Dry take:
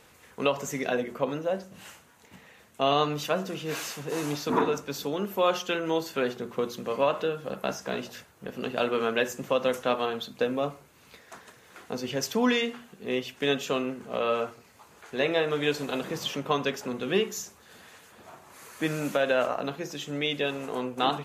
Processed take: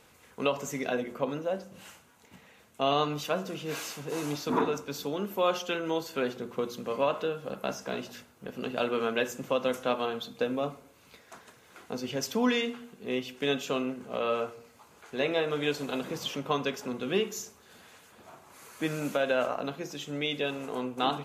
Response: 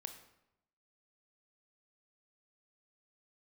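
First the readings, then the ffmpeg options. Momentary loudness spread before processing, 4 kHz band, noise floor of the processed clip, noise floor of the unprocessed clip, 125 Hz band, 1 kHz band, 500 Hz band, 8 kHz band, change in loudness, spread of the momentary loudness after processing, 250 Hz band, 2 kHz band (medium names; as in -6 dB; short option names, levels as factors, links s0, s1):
11 LU, -2.5 dB, -59 dBFS, -57 dBFS, -2.5 dB, -2.5 dB, -2.5 dB, -2.5 dB, -2.5 dB, 10 LU, -1.5 dB, -3.0 dB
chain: -filter_complex "[0:a]bandreject=f=1800:w=15,asplit=2[s0][s1];[s1]equalizer=f=250:t=o:w=0.41:g=5.5[s2];[1:a]atrim=start_sample=2205[s3];[s2][s3]afir=irnorm=-1:irlink=0,volume=0.531[s4];[s0][s4]amix=inputs=2:normalize=0,volume=0.562"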